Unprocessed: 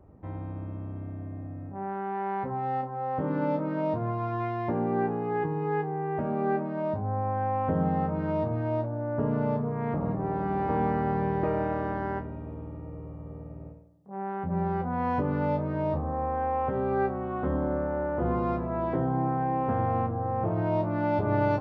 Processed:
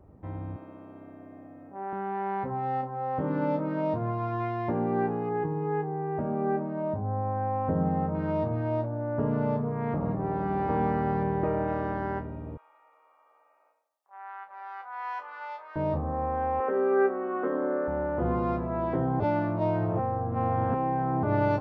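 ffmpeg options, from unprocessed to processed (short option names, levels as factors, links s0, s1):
-filter_complex "[0:a]asettb=1/sr,asplit=3[s0][s1][s2];[s0]atrim=end=0.564[s3];[s1]atrim=start=0.56:end=1.93,asetpts=PTS-STARTPTS,afade=t=in:d=0.004:c=qsin,afade=t=out:st=1.366:d=0.004:c=qsin,highpass=330[s4];[s2]atrim=start=1.926[s5];[s3][s4]acrossfade=d=0.004:c1=hsin:c2=qsin[s6];[s6][s5]acrossfade=d=0.004:c1=qsin:c2=hsin,asettb=1/sr,asplit=3[s7][s8][s9];[s7]atrim=end=5.294[s10];[s8]atrim=start=5.29:end=8.15,asetpts=PTS-STARTPTS,afade=t=in:d=0.004:c=qsin,afade=t=out:st=2.856:d=0.004:c=qsin,highshelf=f=2200:g=-12[s11];[s9]atrim=start=8.146[s12];[s10][s11]acrossfade=d=0.004:c1=hsin:c2=qsin[s13];[s13][s12]acrossfade=d=0.004:c1=qsin:c2=hsin,asettb=1/sr,asplit=3[s14][s15][s16];[s14]atrim=end=11.234[s17];[s15]atrim=start=11.23:end=11.68,asetpts=PTS-STARTPTS,afade=t=in:d=0.004:c=qsin,afade=t=out:st=0.446:d=0.004:c=qsin,lowpass=f=2300:p=1[s18];[s16]atrim=start=11.676[s19];[s17][s18]acrossfade=d=0.004:c1=hsin:c2=qsin[s20];[s20][s19]acrossfade=d=0.004:c1=qsin:c2=hsin,asettb=1/sr,asplit=3[s21][s22][s23];[s21]atrim=end=12.574[s24];[s22]atrim=start=12.57:end=15.76,asetpts=PTS-STARTPTS,afade=t=in:d=0.004:c=qsin,afade=t=out:st=3.186:d=0.004:c=qsin,highpass=f=970:w=0.5412,highpass=f=970:w=1.3066[s25];[s23]atrim=start=15.756[s26];[s24][s25]acrossfade=d=0.004:c1=hsin:c2=qsin[s27];[s27][s26]acrossfade=d=0.004:c1=qsin:c2=hsin,asettb=1/sr,asplit=3[s28][s29][s30];[s28]atrim=end=16.604[s31];[s29]atrim=start=16.6:end=17.88,asetpts=PTS-STARTPTS,afade=t=in:d=0.004:c=qsin,afade=t=out:st=1.276:d=0.004:c=qsin,highpass=f=260:w=0.5412,highpass=f=260:w=1.3066,equalizer=f=430:t=q:w=4:g=9,equalizer=f=850:t=q:w=4:g=-5,equalizer=f=1200:t=q:w=4:g=4,equalizer=f=1700:t=q:w=4:g=6,lowpass=f=3000:w=0.5412,lowpass=f=3000:w=1.3066[s32];[s30]atrim=start=17.876[s33];[s31][s32]acrossfade=d=0.004:c1=hsin:c2=qsin[s34];[s34][s33]acrossfade=d=0.004:c1=qsin:c2=hsin,asplit=3[s35][s36][s37];[s35]atrim=end=19.202[s38];[s36]atrim=start=19.198:end=21.232,asetpts=PTS-STARTPTS,areverse[s39];[s37]atrim=start=21.228[s40];[s38][s39]acrossfade=d=0.004:c1=hsin:c2=hsin[s41];[s41][s40]acrossfade=d=0.004:c1=hsin:c2=hsin"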